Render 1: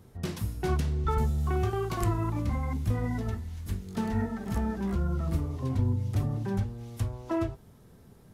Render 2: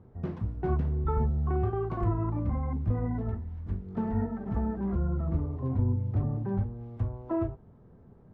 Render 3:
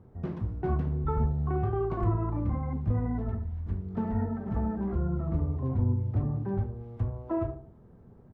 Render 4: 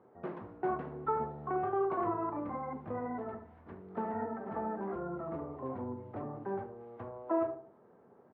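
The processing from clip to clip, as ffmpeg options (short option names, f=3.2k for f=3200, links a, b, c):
-af "lowpass=1.1k"
-filter_complex "[0:a]asplit=2[a][b];[b]adelay=74,lowpass=f=1k:p=1,volume=-8dB,asplit=2[c][d];[d]adelay=74,lowpass=f=1k:p=1,volume=0.39,asplit=2[e][f];[f]adelay=74,lowpass=f=1k:p=1,volume=0.39,asplit=2[g][h];[h]adelay=74,lowpass=f=1k:p=1,volume=0.39[i];[a][c][e][g][i]amix=inputs=5:normalize=0"
-af "highpass=460,lowpass=2k,volume=3.5dB"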